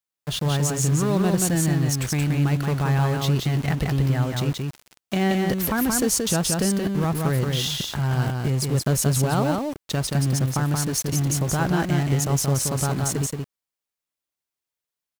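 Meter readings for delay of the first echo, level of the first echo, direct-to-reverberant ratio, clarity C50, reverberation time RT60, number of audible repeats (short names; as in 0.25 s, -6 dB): 0.177 s, -3.5 dB, none, none, none, 1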